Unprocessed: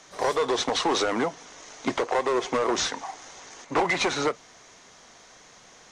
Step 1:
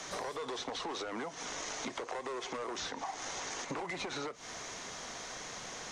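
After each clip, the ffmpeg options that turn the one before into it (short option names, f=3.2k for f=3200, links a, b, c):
-filter_complex "[0:a]acrossover=split=440|910|6500[a][b][c][d];[a]acompressor=threshold=-38dB:ratio=4[e];[b]acompressor=threshold=-39dB:ratio=4[f];[c]acompressor=threshold=-36dB:ratio=4[g];[d]acompressor=threshold=-53dB:ratio=4[h];[e][f][g][h]amix=inputs=4:normalize=0,alimiter=level_in=5dB:limit=-24dB:level=0:latency=1:release=152,volume=-5dB,acompressor=threshold=-44dB:ratio=6,volume=7.5dB"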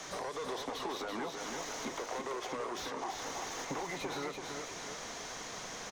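-filter_complex "[0:a]acrossover=split=1200[a][b];[b]asoftclip=type=tanh:threshold=-40dB[c];[a][c]amix=inputs=2:normalize=0,aecho=1:1:334|668|1002|1336|1670|2004:0.562|0.259|0.119|0.0547|0.0252|0.0116"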